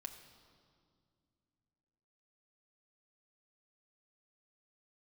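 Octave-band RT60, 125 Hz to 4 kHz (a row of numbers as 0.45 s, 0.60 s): 3.3 s, 3.3 s, 2.4 s, 2.0 s, 1.6 s, 1.7 s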